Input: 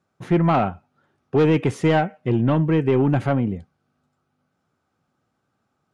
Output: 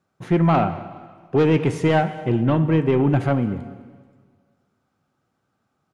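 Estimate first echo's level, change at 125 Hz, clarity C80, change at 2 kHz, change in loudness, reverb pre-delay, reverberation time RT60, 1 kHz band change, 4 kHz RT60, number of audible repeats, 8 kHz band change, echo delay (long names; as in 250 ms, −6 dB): −20.0 dB, +1.0 dB, 13.0 dB, +0.5 dB, +0.5 dB, 7 ms, 1.6 s, +0.5 dB, 1.5 s, 2, can't be measured, 210 ms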